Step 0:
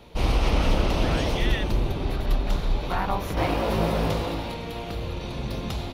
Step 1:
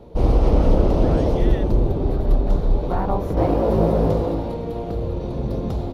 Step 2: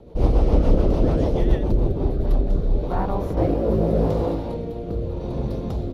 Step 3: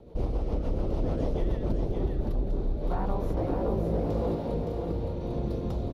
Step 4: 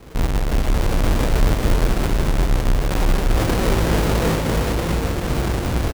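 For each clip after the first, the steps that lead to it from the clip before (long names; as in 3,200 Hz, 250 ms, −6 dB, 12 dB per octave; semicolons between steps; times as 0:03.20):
drawn EQ curve 210 Hz 0 dB, 480 Hz +3 dB, 2,600 Hz −19 dB, 4,400 Hz −15 dB; level +6 dB
rotating-speaker cabinet horn 7 Hz, later 0.85 Hz, at 0:01.63
downward compressor, threshold −20 dBFS, peak gain reduction 9.5 dB; single-tap delay 566 ms −4.5 dB; level −5 dB
each half-wave held at its own peak; single-tap delay 395 ms −5.5 dB; level +4.5 dB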